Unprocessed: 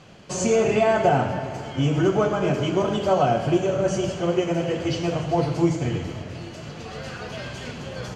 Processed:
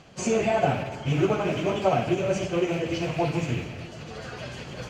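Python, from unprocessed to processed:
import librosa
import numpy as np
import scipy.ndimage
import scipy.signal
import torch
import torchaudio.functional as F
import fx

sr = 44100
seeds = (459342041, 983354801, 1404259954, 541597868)

y = fx.rattle_buzz(x, sr, strikes_db=-30.0, level_db=-23.0)
y = fx.stretch_vocoder_free(y, sr, factor=0.6)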